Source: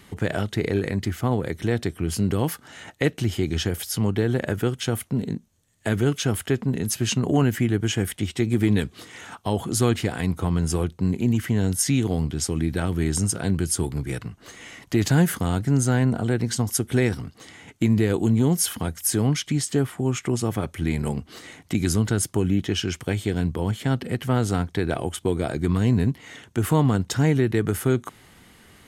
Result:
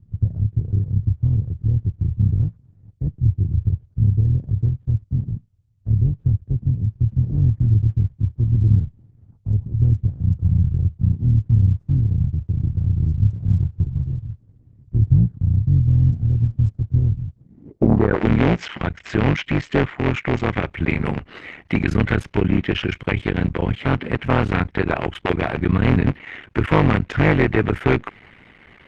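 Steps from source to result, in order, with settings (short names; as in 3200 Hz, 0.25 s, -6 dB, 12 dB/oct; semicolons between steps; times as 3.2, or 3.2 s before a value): cycle switcher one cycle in 3, muted; low-pass sweep 110 Hz -> 2300 Hz, 17.37–18.24; gain +5 dB; Opus 16 kbps 48000 Hz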